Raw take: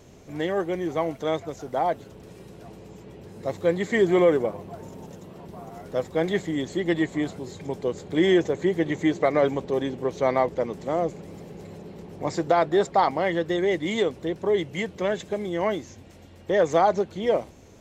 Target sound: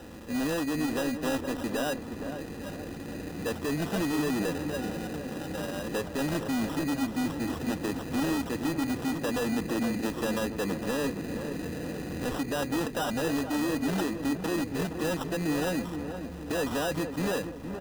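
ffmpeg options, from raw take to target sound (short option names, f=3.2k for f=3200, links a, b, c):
-filter_complex "[0:a]highpass=f=66:p=1,bandreject=f=2.4k:w=8.2,aecho=1:1:3.3:0.61,acrossover=split=270|3000[a][b][c];[b]acompressor=threshold=-32dB:ratio=4[d];[a][d][c]amix=inputs=3:normalize=0,asplit=2[e][f];[f]alimiter=level_in=0.5dB:limit=-24dB:level=0:latency=1:release=380,volume=-0.5dB,volume=-0.5dB[g];[e][g]amix=inputs=2:normalize=0,asoftclip=type=hard:threshold=-26.5dB,asetrate=37084,aresample=44100,atempo=1.18921,acrusher=samples=20:mix=1:aa=0.000001,asplit=2[h][i];[i]adelay=467,lowpass=f=1.2k:p=1,volume=-7.5dB,asplit=2[j][k];[k]adelay=467,lowpass=f=1.2k:p=1,volume=0.52,asplit=2[l][m];[m]adelay=467,lowpass=f=1.2k:p=1,volume=0.52,asplit=2[n][o];[o]adelay=467,lowpass=f=1.2k:p=1,volume=0.52,asplit=2[p][q];[q]adelay=467,lowpass=f=1.2k:p=1,volume=0.52,asplit=2[r][s];[s]adelay=467,lowpass=f=1.2k:p=1,volume=0.52[t];[h][j][l][n][p][r][t]amix=inputs=7:normalize=0" -ar 44100 -c:a aac -b:a 128k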